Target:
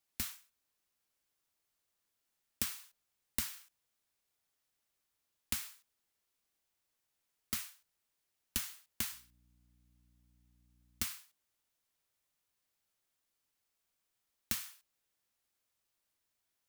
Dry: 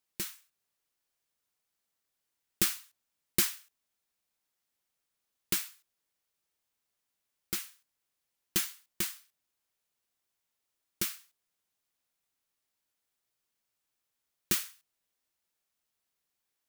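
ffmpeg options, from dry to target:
-filter_complex "[0:a]afreqshift=-120,acompressor=threshold=-32dB:ratio=12,asettb=1/sr,asplit=3[a][b][c];[a]atrim=end=9.114[d];[b]atrim=start=9.11:end=11.05,asetpts=PTS-STARTPTS,afade=t=in:d=0.004:c=qsin,afade=t=out:st=1.936:d=0.004:c=qsin,aeval=exprs='val(0)+0.000355*(sin(2*PI*60*n/s)+sin(2*PI*2*60*n/s)/2+sin(2*PI*3*60*n/s)/3+sin(2*PI*4*60*n/s)/4+sin(2*PI*5*60*n/s)/5)':c=same[e];[c]atrim=start=11.046[f];[d][e]acrossfade=d=0.004:c1=hsin:c2=qsin[g];[g][f]acrossfade=d=0.004:c1=qsin:c2=hsin"

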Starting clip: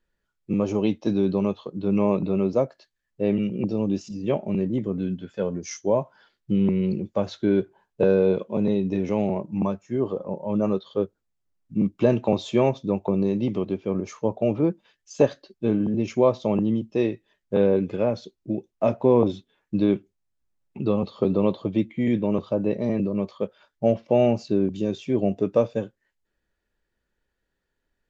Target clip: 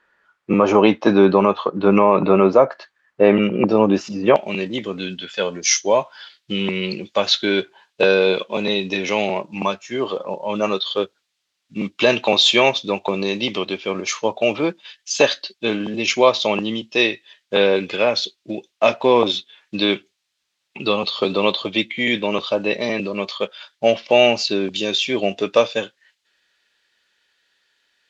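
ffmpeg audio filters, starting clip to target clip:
-af "asetnsamples=n=441:p=0,asendcmd='4.36 bandpass f 3600',bandpass=f=1.3k:t=q:w=1.4:csg=0,alimiter=level_in=25.5dB:limit=-1dB:release=50:level=0:latency=1,volume=-1dB"

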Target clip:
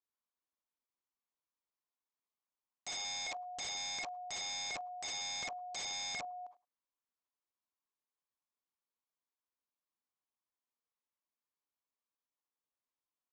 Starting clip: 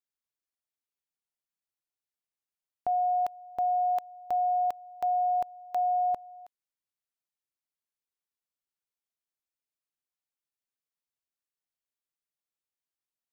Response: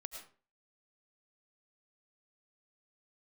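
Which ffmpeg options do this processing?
-filter_complex "[0:a]equalizer=f=125:t=o:w=1:g=-7,equalizer=f=250:t=o:w=1:g=11,equalizer=f=500:t=o:w=1:g=4,equalizer=f=1k:t=o:w=1:g=11,aecho=1:1:101:0.0944[a];[1:a]atrim=start_sample=2205,afade=t=out:st=0.19:d=0.01,atrim=end_sample=8820,asetrate=74970,aresample=44100[b];[a][b]afir=irnorm=-1:irlink=0,acompressor=threshold=-28dB:ratio=16,aresample=16000,aeval=exprs='(mod(70.8*val(0)+1,2)-1)/70.8':c=same,aresample=44100"

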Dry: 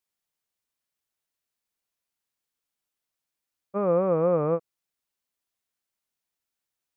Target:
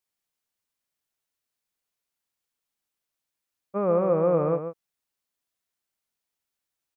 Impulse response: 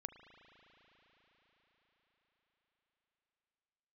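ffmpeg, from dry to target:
-af "aecho=1:1:138:0.355"

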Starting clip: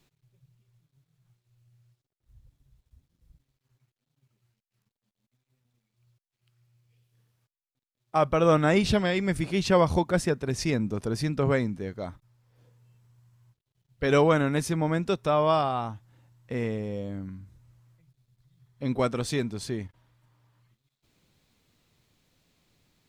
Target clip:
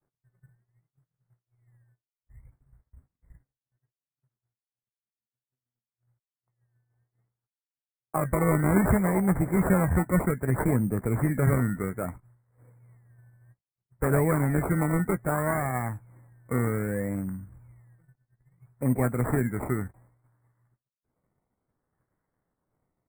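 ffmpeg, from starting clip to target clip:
-filter_complex "[0:a]agate=range=-33dB:threshold=-57dB:ratio=3:detection=peak,acrossover=split=220|2000[a][b][c];[b]acompressor=threshold=-34dB:ratio=4[d];[a][d][c]amix=inputs=3:normalize=0,acrusher=samples=21:mix=1:aa=0.000001:lfo=1:lforange=12.6:lforate=0.62,asuperstop=centerf=4200:order=20:qfactor=0.76,asplit=2[e][f];[f]adelay=16,volume=-13dB[g];[e][g]amix=inputs=2:normalize=0,volume=5dB"

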